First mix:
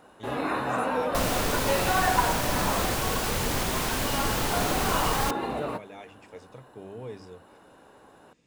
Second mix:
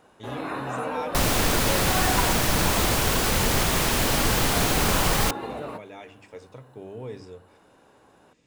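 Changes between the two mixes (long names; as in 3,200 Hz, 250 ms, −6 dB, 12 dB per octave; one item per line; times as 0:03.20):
speech: send on
first sound −3.5 dB
second sound +6.0 dB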